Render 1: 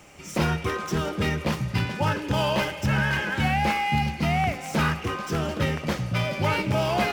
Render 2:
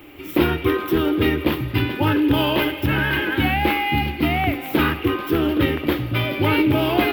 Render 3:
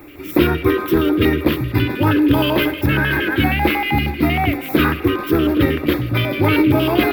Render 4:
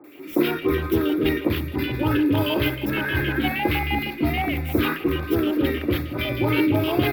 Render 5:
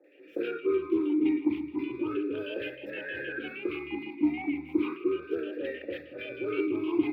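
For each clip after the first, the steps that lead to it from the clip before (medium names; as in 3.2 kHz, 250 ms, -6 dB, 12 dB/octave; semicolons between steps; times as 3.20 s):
FFT filter 110 Hz 0 dB, 190 Hz -12 dB, 300 Hz +13 dB, 550 Hz -4 dB, 1.2 kHz -2 dB, 1.8 kHz -1 dB, 3.5 kHz +2 dB, 6.1 kHz -20 dB, 8.7 kHz -14 dB, 13 kHz +10 dB; trim +5 dB
LFO notch square 6.4 Hz 840–3000 Hz; trim +4 dB
three bands offset in time mids, highs, lows 40/300 ms, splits 160/1200 Hz; trim -5 dB
talking filter e-u 0.34 Hz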